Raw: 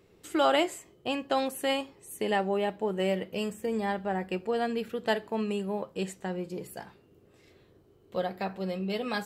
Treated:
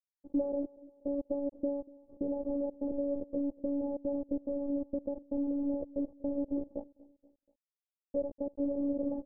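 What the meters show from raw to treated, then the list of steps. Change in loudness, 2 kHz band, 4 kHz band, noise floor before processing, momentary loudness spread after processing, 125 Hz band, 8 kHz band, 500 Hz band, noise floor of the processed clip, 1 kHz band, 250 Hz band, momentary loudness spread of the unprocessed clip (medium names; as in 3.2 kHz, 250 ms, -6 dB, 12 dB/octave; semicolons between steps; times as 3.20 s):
-4.5 dB, under -40 dB, under -40 dB, -61 dBFS, 6 LU, -17.0 dB, under -35 dB, -5.5 dB, under -85 dBFS, -22.0 dB, +0.5 dB, 9 LU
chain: compression 12:1, threshold -35 dBFS, peak gain reduction 16 dB; companded quantiser 2-bit; robot voice 282 Hz; steep low-pass 600 Hz 36 dB/octave; feedback delay 240 ms, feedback 50%, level -22 dB; trim +1.5 dB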